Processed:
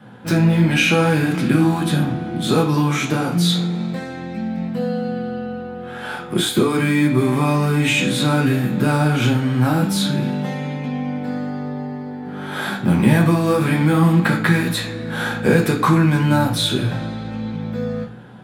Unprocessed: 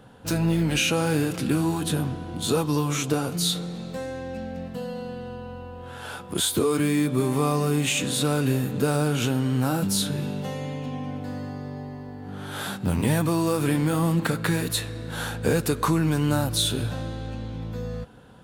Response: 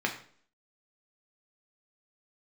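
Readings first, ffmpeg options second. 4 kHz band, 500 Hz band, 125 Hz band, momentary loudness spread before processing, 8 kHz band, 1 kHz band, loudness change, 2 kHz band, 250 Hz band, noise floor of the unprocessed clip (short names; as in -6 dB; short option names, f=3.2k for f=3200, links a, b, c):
+4.5 dB, +5.0 dB, +7.5 dB, 13 LU, -1.0 dB, +7.5 dB, +7.0 dB, +9.5 dB, +8.0 dB, -39 dBFS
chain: -filter_complex "[0:a]adynamicequalizer=threshold=0.00794:dfrequency=420:dqfactor=3.6:tfrequency=420:tqfactor=3.6:attack=5:release=100:ratio=0.375:range=3:mode=cutabove:tftype=bell[a];[1:a]atrim=start_sample=2205,asetrate=43218,aresample=44100[b];[a][b]afir=irnorm=-1:irlink=0"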